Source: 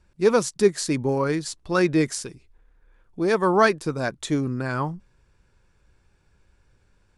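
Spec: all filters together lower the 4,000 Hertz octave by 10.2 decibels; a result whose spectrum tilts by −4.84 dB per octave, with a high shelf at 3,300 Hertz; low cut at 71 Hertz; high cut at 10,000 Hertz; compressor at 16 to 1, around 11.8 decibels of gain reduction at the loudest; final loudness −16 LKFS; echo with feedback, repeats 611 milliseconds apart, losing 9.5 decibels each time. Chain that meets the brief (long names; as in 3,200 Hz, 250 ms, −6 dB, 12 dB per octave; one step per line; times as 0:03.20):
high-pass filter 71 Hz
low-pass filter 10,000 Hz
high-shelf EQ 3,300 Hz −6 dB
parametric band 4,000 Hz −8 dB
downward compressor 16 to 1, threshold −24 dBFS
repeating echo 611 ms, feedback 33%, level −9.5 dB
level +14.5 dB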